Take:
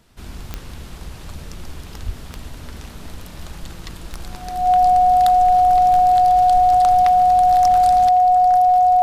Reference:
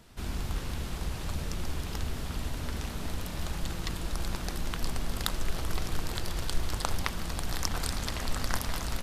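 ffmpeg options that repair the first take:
-filter_complex "[0:a]adeclick=t=4,bandreject=f=730:w=30,asplit=3[a][b][c];[a]afade=t=out:st=2.05:d=0.02[d];[b]highpass=f=140:w=0.5412,highpass=f=140:w=1.3066,afade=t=in:st=2.05:d=0.02,afade=t=out:st=2.17:d=0.02[e];[c]afade=t=in:st=2.17:d=0.02[f];[d][e][f]amix=inputs=3:normalize=0,asetnsamples=n=441:p=0,asendcmd='8.09 volume volume 8.5dB',volume=0dB"

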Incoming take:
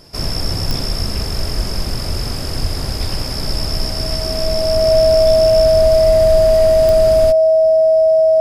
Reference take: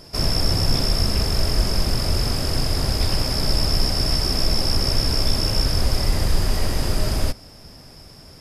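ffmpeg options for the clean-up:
-filter_complex "[0:a]adeclick=t=4,bandreject=f=640:w=30,asplit=3[a][b][c];[a]afade=t=out:st=2.61:d=0.02[d];[b]highpass=f=140:w=0.5412,highpass=f=140:w=1.3066,afade=t=in:st=2.61:d=0.02,afade=t=out:st=2.73:d=0.02[e];[c]afade=t=in:st=2.73:d=0.02[f];[d][e][f]amix=inputs=3:normalize=0"

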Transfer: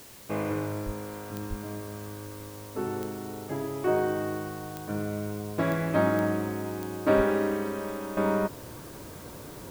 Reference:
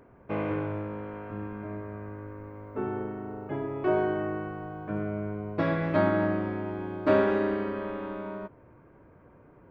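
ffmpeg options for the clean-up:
-filter_complex "[0:a]adeclick=t=4,asplit=3[a][b][c];[a]afade=t=out:st=0.85:d=0.02[d];[b]highpass=f=140:w=0.5412,highpass=f=140:w=1.3066,afade=t=in:st=0.85:d=0.02,afade=t=out:st=0.97:d=0.02[e];[c]afade=t=in:st=0.97:d=0.02[f];[d][e][f]amix=inputs=3:normalize=0,asplit=3[g][h][i];[g]afade=t=out:st=1.49:d=0.02[j];[h]highpass=f=140:w=0.5412,highpass=f=140:w=1.3066,afade=t=in:st=1.49:d=0.02,afade=t=out:st=1.61:d=0.02[k];[i]afade=t=in:st=1.61:d=0.02[l];[j][k][l]amix=inputs=3:normalize=0,asplit=3[m][n][o];[m]afade=t=out:st=7.16:d=0.02[p];[n]highpass=f=140:w=0.5412,highpass=f=140:w=1.3066,afade=t=in:st=7.16:d=0.02,afade=t=out:st=7.28:d=0.02[q];[o]afade=t=in:st=7.28:d=0.02[r];[p][q][r]amix=inputs=3:normalize=0,afwtdn=0.0032,asetnsamples=n=441:p=0,asendcmd='8.17 volume volume -11.5dB',volume=0dB"

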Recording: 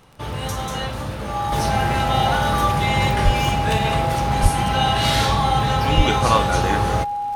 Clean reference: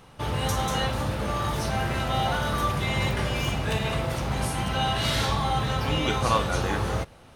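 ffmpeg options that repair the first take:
-filter_complex "[0:a]adeclick=t=4,bandreject=f=820:w=30,asplit=3[a][b][c];[a]afade=t=out:st=3.24:d=0.02[d];[b]highpass=f=140:w=0.5412,highpass=f=140:w=1.3066,afade=t=in:st=3.24:d=0.02,afade=t=out:st=3.36:d=0.02[e];[c]afade=t=in:st=3.36:d=0.02[f];[d][e][f]amix=inputs=3:normalize=0,asplit=3[g][h][i];[g]afade=t=out:st=4.42:d=0.02[j];[h]highpass=f=140:w=0.5412,highpass=f=140:w=1.3066,afade=t=in:st=4.42:d=0.02,afade=t=out:st=4.54:d=0.02[k];[i]afade=t=in:st=4.54:d=0.02[l];[j][k][l]amix=inputs=3:normalize=0,asplit=3[m][n][o];[m]afade=t=out:st=5.96:d=0.02[p];[n]highpass=f=140:w=0.5412,highpass=f=140:w=1.3066,afade=t=in:st=5.96:d=0.02,afade=t=out:st=6.08:d=0.02[q];[o]afade=t=in:st=6.08:d=0.02[r];[p][q][r]amix=inputs=3:normalize=0,asetnsamples=n=441:p=0,asendcmd='1.52 volume volume -6dB',volume=0dB"

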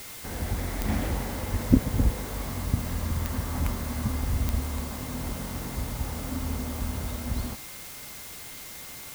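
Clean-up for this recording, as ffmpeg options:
-af "adeclick=t=4,bandreject=f=2.1k:w=30,afwtdn=0.0079"

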